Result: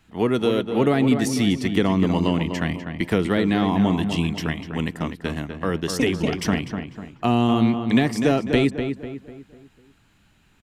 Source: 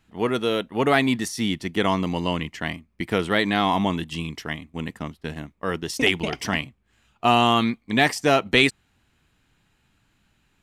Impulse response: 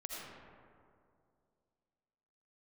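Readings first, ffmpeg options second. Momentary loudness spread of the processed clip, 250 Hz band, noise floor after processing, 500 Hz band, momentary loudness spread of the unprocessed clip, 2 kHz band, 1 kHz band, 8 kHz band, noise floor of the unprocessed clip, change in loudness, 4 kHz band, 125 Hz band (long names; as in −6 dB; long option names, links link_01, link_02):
10 LU, +5.5 dB, −59 dBFS, +1.5 dB, 14 LU, −5.0 dB, −4.0 dB, 0.0 dB, −67 dBFS, +1.0 dB, −4.5 dB, +6.0 dB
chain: -filter_complex "[0:a]acrossover=split=430[link_01][link_02];[link_02]acompressor=threshold=-31dB:ratio=6[link_03];[link_01][link_03]amix=inputs=2:normalize=0,asplit=2[link_04][link_05];[link_05]adelay=248,lowpass=frequency=2400:poles=1,volume=-7dB,asplit=2[link_06][link_07];[link_07]adelay=248,lowpass=frequency=2400:poles=1,volume=0.43,asplit=2[link_08][link_09];[link_09]adelay=248,lowpass=frequency=2400:poles=1,volume=0.43,asplit=2[link_10][link_11];[link_11]adelay=248,lowpass=frequency=2400:poles=1,volume=0.43,asplit=2[link_12][link_13];[link_13]adelay=248,lowpass=frequency=2400:poles=1,volume=0.43[link_14];[link_04][link_06][link_08][link_10][link_12][link_14]amix=inputs=6:normalize=0,volume=5dB"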